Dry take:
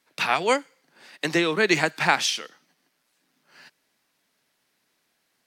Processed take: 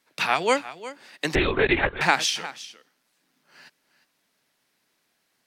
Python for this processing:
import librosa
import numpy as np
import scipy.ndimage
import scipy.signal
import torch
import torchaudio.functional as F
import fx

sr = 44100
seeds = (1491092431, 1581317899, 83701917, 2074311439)

y = x + 10.0 ** (-15.5 / 20.0) * np.pad(x, (int(356 * sr / 1000.0), 0))[:len(x)]
y = fx.lpc_vocoder(y, sr, seeds[0], excitation='whisper', order=16, at=(1.35, 2.01))